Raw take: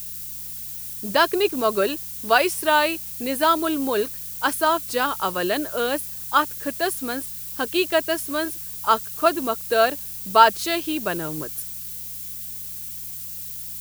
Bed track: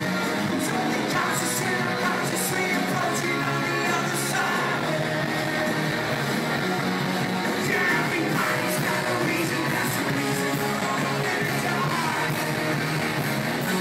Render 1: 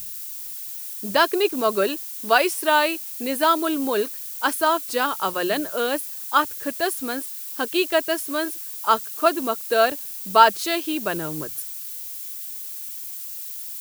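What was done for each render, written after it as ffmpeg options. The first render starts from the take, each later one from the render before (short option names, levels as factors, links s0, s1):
-af "bandreject=f=60:t=h:w=4,bandreject=f=120:t=h:w=4,bandreject=f=180:t=h:w=4"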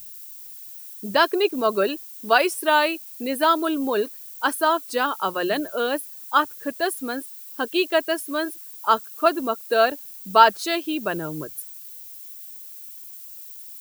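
-af "afftdn=nr=9:nf=-34"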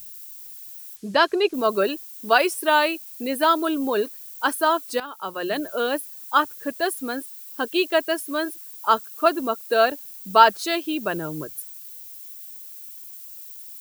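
-filter_complex "[0:a]asettb=1/sr,asplit=3[s0][s1][s2];[s0]atrim=end=0.964[s3];[s1]atrim=start=0.96:end=1.54,asetpts=PTS-STARTPTS,afade=t=in:d=0.004:c=qsin,afade=t=out:st=0.576:d=0.004:c=qsin,lowpass=7300[s4];[s2]atrim=start=1.536[s5];[s3][s4]acrossfade=d=0.004:c1=hsin:c2=qsin[s6];[s6][s5]acrossfade=d=0.004:c1=qsin:c2=hsin,asplit=2[s7][s8];[s7]atrim=end=5,asetpts=PTS-STARTPTS,afade=t=out:st=4.996:d=0.004:c=hsin:silence=0.16788[s9];[s8]atrim=start=5,asetpts=PTS-STARTPTS,afade=t=in:d=0.72:silence=0.16788[s10];[s9][s10]concat=n=2:v=0:a=1"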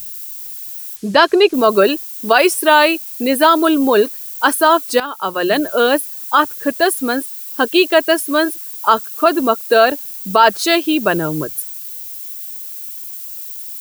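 -af "alimiter=level_in=3.35:limit=0.891:release=50:level=0:latency=1"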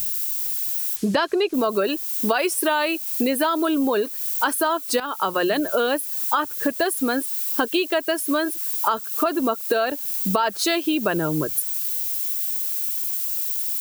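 -filter_complex "[0:a]asplit=2[s0][s1];[s1]alimiter=limit=0.335:level=0:latency=1,volume=0.708[s2];[s0][s2]amix=inputs=2:normalize=0,acompressor=threshold=0.112:ratio=6"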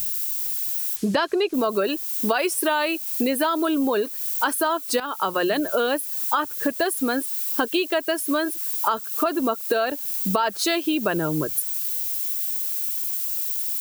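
-af "volume=0.891"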